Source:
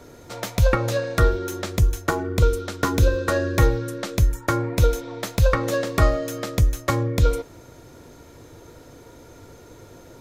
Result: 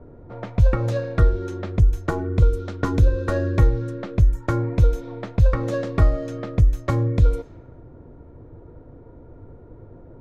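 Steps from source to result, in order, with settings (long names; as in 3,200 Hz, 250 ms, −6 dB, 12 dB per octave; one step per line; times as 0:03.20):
low-pass that shuts in the quiet parts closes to 1,000 Hz, open at −17 dBFS
spectral tilt −2.5 dB per octave
downward compressor 2 to 1, threshold −10 dBFS, peak gain reduction 5 dB
level −4 dB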